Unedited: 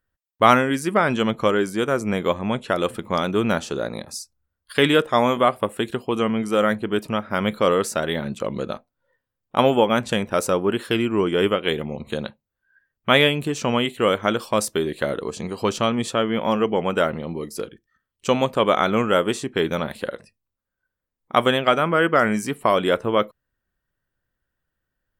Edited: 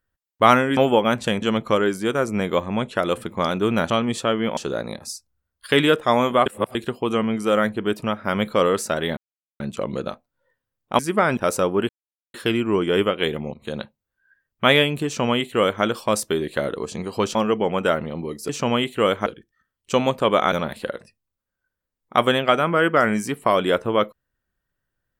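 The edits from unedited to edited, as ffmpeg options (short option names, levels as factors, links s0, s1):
-filter_complex "[0:a]asplit=16[s0][s1][s2][s3][s4][s5][s6][s7][s8][s9][s10][s11][s12][s13][s14][s15];[s0]atrim=end=0.772[s16];[s1]atrim=start=9.618:end=10.272[s17];[s2]atrim=start=1.148:end=3.632[s18];[s3]atrim=start=15.798:end=16.472[s19];[s4]atrim=start=3.628:end=5.522[s20];[s5]atrim=start=5.518:end=5.812,asetpts=PTS-STARTPTS,areverse[s21];[s6]atrim=start=5.808:end=8.23,asetpts=PTS-STARTPTS,afade=t=out:st=2.418:d=0.004:c=hsin,apad=pad_dur=0.43[s22];[s7]atrim=start=8.23:end=9.622,asetpts=PTS-STARTPTS,afade=t=in:d=0.004:c=hsin[s23];[s8]atrim=start=0.768:end=1.152[s24];[s9]atrim=start=10.268:end=10.79,asetpts=PTS-STARTPTS,afade=t=out:st=0.518:d=0.004:c=hsin,apad=pad_dur=0.45[s25];[s10]atrim=start=10.79:end=11.99,asetpts=PTS-STARTPTS,afade=t=in:d=0.004:c=hsin,afade=t=out:st=1.196:d=0.004:c=hsin:silence=0.158489[s26];[s11]atrim=start=11.99:end=15.802,asetpts=PTS-STARTPTS,afade=t=in:d=0.25:silence=0.158489[s27];[s12]atrim=start=16.468:end=17.612[s28];[s13]atrim=start=13.508:end=14.282[s29];[s14]atrim=start=17.608:end=18.872[s30];[s15]atrim=start=19.708[s31];[s16][s17]acrossfade=d=0.004:c1=hsin:c2=hsin[s32];[s32][s18]acrossfade=d=0.004:c1=hsin:c2=hsin[s33];[s33][s19]acrossfade=d=0.004:c1=hsin:c2=hsin[s34];[s34][s20]acrossfade=d=0.004:c1=hsin:c2=hsin[s35];[s35][s21]acrossfade=d=0.004:c1=hsin:c2=hsin[s36];[s22][s23]concat=n=2:v=0:a=1[s37];[s36][s37]acrossfade=d=0.004:c1=hsin:c2=hsin[s38];[s38][s24]acrossfade=d=0.004:c1=hsin:c2=hsin[s39];[s25][s26][s27]concat=n=3:v=0:a=1[s40];[s39][s40]acrossfade=d=0.004:c1=hsin:c2=hsin[s41];[s41][s28]acrossfade=d=0.004:c1=hsin:c2=hsin[s42];[s42][s29]acrossfade=d=0.004:c1=hsin:c2=hsin[s43];[s43][s30]acrossfade=d=0.004:c1=hsin:c2=hsin[s44];[s44][s31]acrossfade=d=0.004:c1=hsin:c2=hsin"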